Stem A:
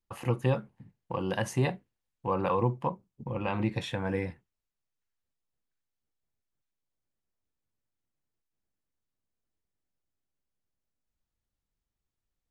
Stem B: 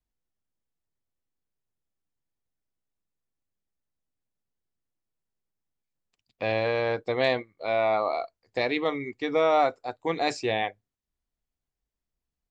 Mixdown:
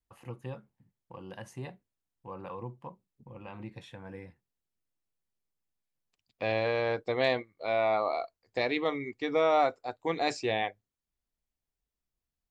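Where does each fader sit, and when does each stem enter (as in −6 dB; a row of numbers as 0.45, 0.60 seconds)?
−13.5, −3.0 decibels; 0.00, 0.00 seconds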